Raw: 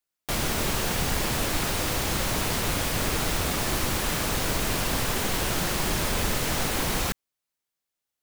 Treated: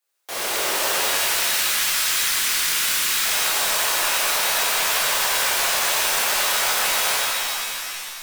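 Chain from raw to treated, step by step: high-pass 410 Hz 24 dB/octave, from 0.99 s 1.3 kHz, from 3.25 s 580 Hz; peak limiter -21.5 dBFS, peak gain reduction 4.5 dB; saturation -34.5 dBFS, distortion -9 dB; pitch-shifted reverb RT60 2.7 s, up +7 st, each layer -2 dB, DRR -9 dB; trim +4.5 dB

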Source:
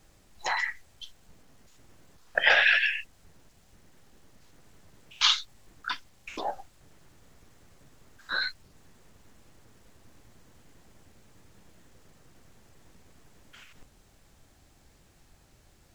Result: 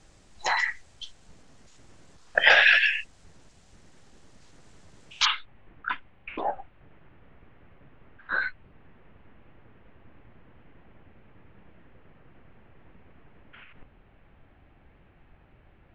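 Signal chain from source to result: steep low-pass 9.1 kHz 36 dB/octave, from 5.24 s 2.8 kHz; trim +3.5 dB

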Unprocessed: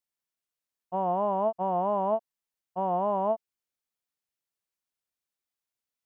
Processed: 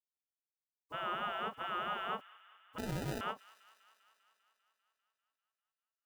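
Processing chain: spectral gate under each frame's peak -25 dB weak; 2.78–3.21 s: sample-rate reducer 1.1 kHz, jitter 0%; on a send: feedback echo behind a high-pass 198 ms, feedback 70%, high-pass 1.5 kHz, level -17.5 dB; on the sum: endings held to a fixed fall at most 330 dB/s; trim +17 dB

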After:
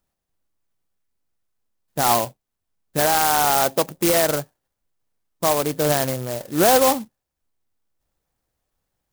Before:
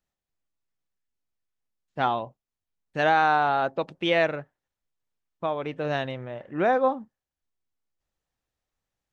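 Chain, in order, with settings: dynamic bell 1.1 kHz, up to +3 dB, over -33 dBFS, Q 0.94; peak limiter -16.5 dBFS, peak gain reduction 9.5 dB; sampling jitter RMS 0.11 ms; trim +8.5 dB

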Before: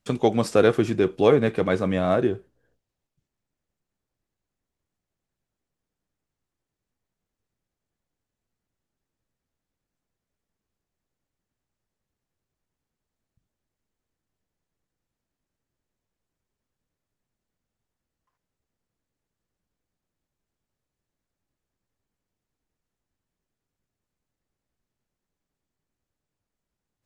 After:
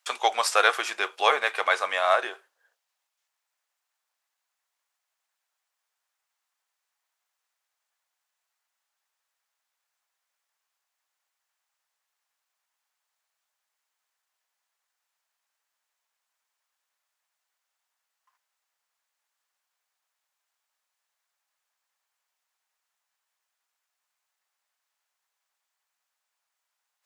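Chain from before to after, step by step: high-pass 820 Hz 24 dB/octave; trim +8 dB

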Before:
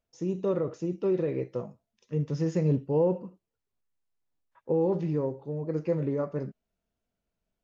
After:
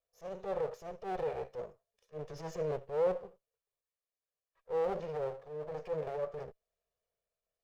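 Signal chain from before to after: comb filter that takes the minimum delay 1.7 ms; transient shaper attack -11 dB, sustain +1 dB; resonant low shelf 370 Hz -6.5 dB, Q 3; trim -5 dB

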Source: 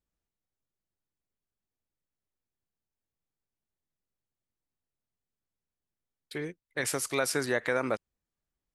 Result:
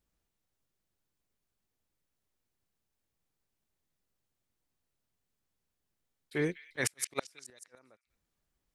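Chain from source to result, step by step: slow attack 100 ms; inverted gate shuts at -22 dBFS, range -39 dB; repeats whose band climbs or falls 197 ms, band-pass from 2.9 kHz, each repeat 0.7 oct, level -10.5 dB; trim +6 dB

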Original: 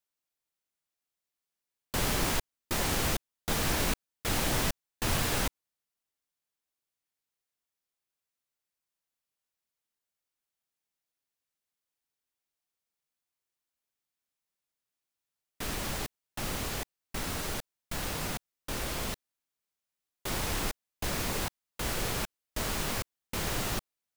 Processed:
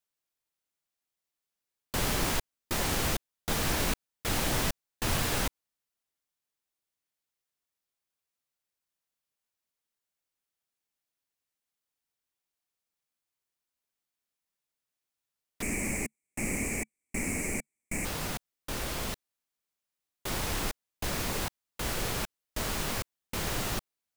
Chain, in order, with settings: 15.62–18.05 s: FFT filter 150 Hz 0 dB, 220 Hz +9 dB, 1.5 kHz -10 dB, 2.3 kHz +13 dB, 3.4 kHz -25 dB, 7.9 kHz +10 dB, 14 kHz -5 dB

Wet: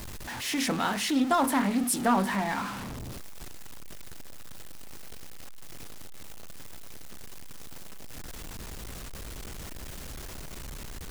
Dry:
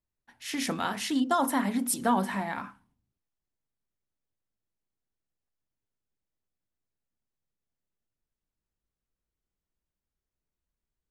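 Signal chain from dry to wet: jump at every zero crossing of -31.5 dBFS; loudspeaker Doppler distortion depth 0.17 ms

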